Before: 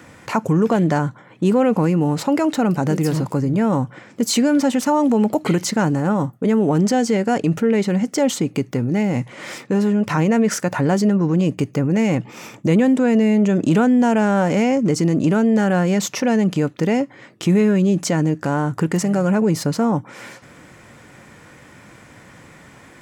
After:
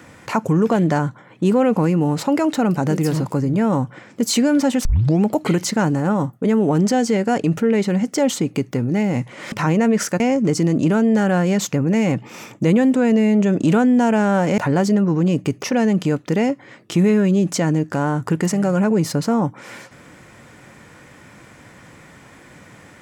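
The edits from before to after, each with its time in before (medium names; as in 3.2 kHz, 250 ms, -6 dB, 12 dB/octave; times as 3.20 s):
4.85 s: tape start 0.39 s
9.52–10.03 s: delete
10.71–11.76 s: swap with 14.61–16.14 s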